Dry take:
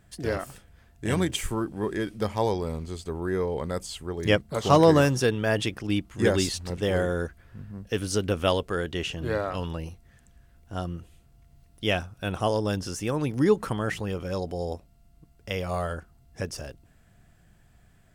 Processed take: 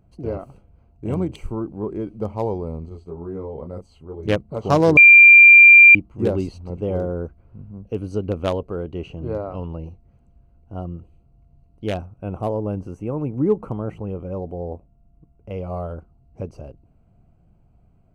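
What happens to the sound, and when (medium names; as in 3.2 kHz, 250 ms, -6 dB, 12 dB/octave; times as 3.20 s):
2.89–4.28 s: detune thickener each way 19 cents
4.97–5.95 s: bleep 2.38 kHz -6 dBFS
12.16–15.52 s: peaking EQ 4.4 kHz -10 dB
whole clip: local Wiener filter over 25 samples; trim +2.5 dB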